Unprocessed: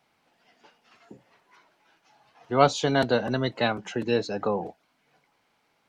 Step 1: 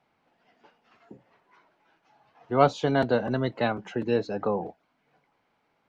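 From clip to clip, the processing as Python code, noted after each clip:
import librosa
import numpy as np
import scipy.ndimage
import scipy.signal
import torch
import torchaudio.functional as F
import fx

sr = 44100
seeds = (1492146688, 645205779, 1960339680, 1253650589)

y = fx.lowpass(x, sr, hz=1700.0, slope=6)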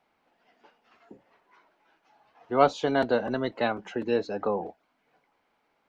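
y = fx.peak_eq(x, sr, hz=130.0, db=-9.5, octaves=0.99)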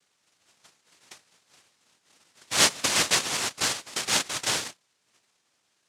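y = fx.noise_vocoder(x, sr, seeds[0], bands=1)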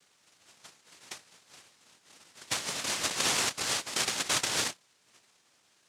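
y = fx.over_compress(x, sr, threshold_db=-31.0, ratio=-1.0)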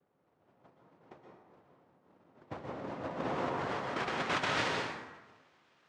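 y = fx.filter_sweep_lowpass(x, sr, from_hz=690.0, to_hz=2500.0, start_s=2.98, end_s=4.59, q=0.77)
y = fx.rev_plate(y, sr, seeds[1], rt60_s=1.2, hf_ratio=0.6, predelay_ms=110, drr_db=0.0)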